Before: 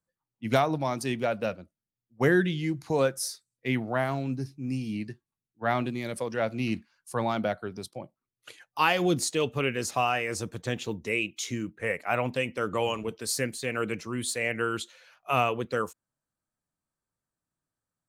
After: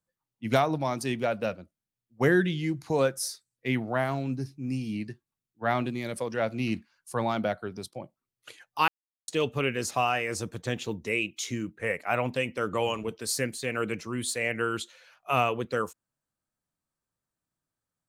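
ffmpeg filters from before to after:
-filter_complex "[0:a]asplit=3[s0][s1][s2];[s0]atrim=end=8.88,asetpts=PTS-STARTPTS,afade=t=out:st=8.876:d=0.004:c=hsin[s3];[s1]atrim=start=8.88:end=9.28,asetpts=PTS-STARTPTS,volume=0[s4];[s2]atrim=start=9.28,asetpts=PTS-STARTPTS,afade=t=in:d=0.004:c=hsin[s5];[s3][s4][s5]concat=n=3:v=0:a=1"

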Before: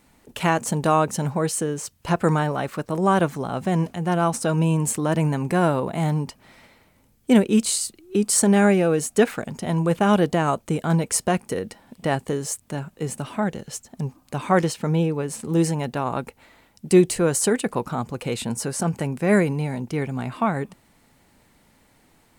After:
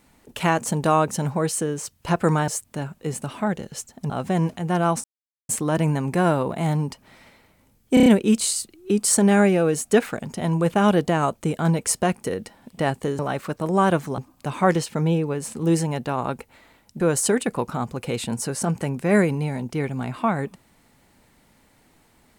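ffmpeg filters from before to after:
-filter_complex "[0:a]asplit=12[s0][s1][s2][s3][s4][s5][s6][s7][s8][s9][s10][s11];[s0]atrim=end=2.482[s12];[s1]atrim=start=12.438:end=14.062[s13];[s2]atrim=start=3.468:end=4.41,asetpts=PTS-STARTPTS,afade=t=out:st=0.938:d=0.004:c=hsin[s14];[s3]atrim=start=4.41:end=4.86,asetpts=PTS-STARTPTS,volume=0[s15];[s4]atrim=start=4.86:end=7.342,asetpts=PTS-STARTPTS,afade=t=in:d=0.004:c=hsin[s16];[s5]atrim=start=7.308:end=7.342[s17];[s6]atrim=start=7.308:end=7.342[s18];[s7]atrim=start=7.308:end=7.342[s19];[s8]atrim=start=7.308:end=12.442[s20];[s9]atrim=start=2.478:end=3.472[s21];[s10]atrim=start=14.058:end=16.882[s22];[s11]atrim=start=17.178[s23];[s12][s13]acrossfade=d=0.004:c1=hsin:c2=hsin[s24];[s14][s15][s16]concat=n=3:v=0:a=1[s25];[s24][s25]acrossfade=d=0.004:c1=hsin:c2=hsin[s26];[s26][s17]acrossfade=d=0.004:c1=hsin:c2=hsin[s27];[s27][s18]acrossfade=d=0.004:c1=hsin:c2=hsin[s28];[s28][s19]acrossfade=d=0.004:c1=hsin:c2=hsin[s29];[s29][s20]acrossfade=d=0.004:c1=hsin:c2=hsin[s30];[s30][s21]acrossfade=d=0.004:c1=hsin:c2=hsin[s31];[s31][s22]acrossfade=d=0.004:c1=hsin:c2=hsin[s32];[s32][s23]acrossfade=d=0.004:c1=hsin:c2=hsin"

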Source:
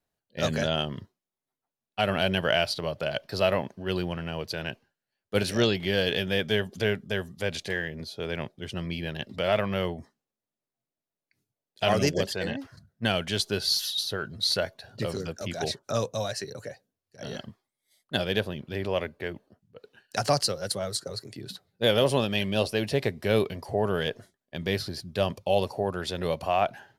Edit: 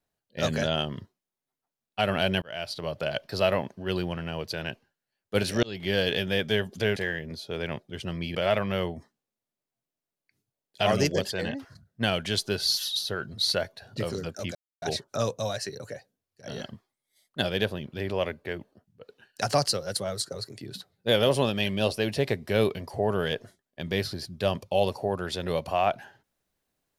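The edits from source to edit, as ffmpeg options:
-filter_complex "[0:a]asplit=6[s0][s1][s2][s3][s4][s5];[s0]atrim=end=2.42,asetpts=PTS-STARTPTS,afade=t=out:st=2.416:d=0.004:c=hsin[s6];[s1]atrim=start=2.42:end=5.63,asetpts=PTS-STARTPTS,afade=t=in:d=0.54,afade=t=out:st=3.206:d=0.004:c=hsin[s7];[s2]atrim=start=5.63:end=6.962,asetpts=PTS-STARTPTS,afade=t=in:d=0.28[s8];[s3]atrim=start=7.648:end=9.042[s9];[s4]atrim=start=9.368:end=15.57,asetpts=PTS-STARTPTS,afade=t=out:st=6.198:d=0.004:c=hsin,apad=pad_dur=0.27[s10];[s5]atrim=start=15.57,asetpts=PTS-STARTPTS,afade=t=in:d=0.004:c=hsin[s11];[s6][s7][s8]concat=n=3:v=0:a=1[s12];[s12][s9]acrossfade=d=0.004:c1=hsin:c2=hsin[s13];[s10][s11]concat=n=2:v=0:a=1[s14];[s13][s14]acrossfade=d=0.004:c1=hsin:c2=hsin"

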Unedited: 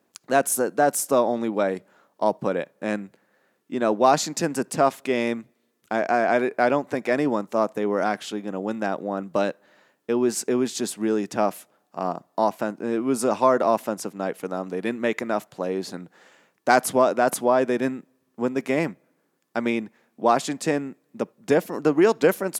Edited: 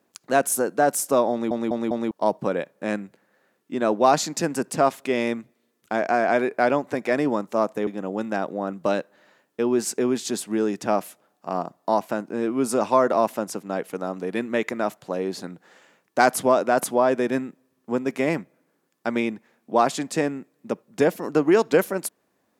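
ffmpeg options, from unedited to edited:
-filter_complex "[0:a]asplit=6[s0][s1][s2][s3][s4][s5];[s0]atrim=end=1.512[s6];[s1]atrim=start=1.308:end=1.512[s7];[s2]atrim=start=1.308:end=1.512[s8];[s3]atrim=start=1.308:end=1.512[s9];[s4]atrim=start=2.108:end=7.872[s10];[s5]atrim=start=8.368[s11];[s6][s7]acrossfade=d=0.004:c1=hsin:c2=hsin[s12];[s12][s8]acrossfade=d=0.004:c1=hsin:c2=hsin[s13];[s13][s9]acrossfade=d=0.004:c1=hsin:c2=hsin[s14];[s14][s10]acrossfade=d=0.004:c1=hsin:c2=hsin[s15];[s15][s11]acrossfade=d=0.004:c1=hsin:c2=hsin"

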